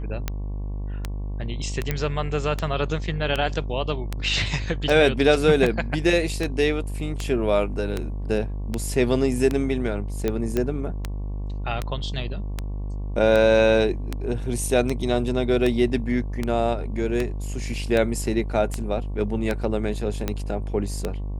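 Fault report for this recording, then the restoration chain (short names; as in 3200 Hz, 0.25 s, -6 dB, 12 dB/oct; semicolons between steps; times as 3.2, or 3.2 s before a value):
buzz 50 Hz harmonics 23 -29 dBFS
tick 78 rpm -11 dBFS
1.91 pop -10 dBFS
10.57 pop -11 dBFS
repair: de-click; de-hum 50 Hz, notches 23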